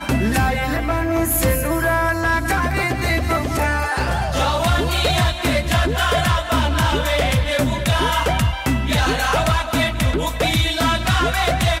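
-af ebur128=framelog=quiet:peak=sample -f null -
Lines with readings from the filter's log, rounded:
Integrated loudness:
  I:         -18.7 LUFS
  Threshold: -28.7 LUFS
Loudness range:
  LRA:         0.9 LU
  Threshold: -38.8 LUFS
  LRA low:   -19.2 LUFS
  LRA high:  -18.3 LUFS
Sample peak:
  Peak:      -10.9 dBFS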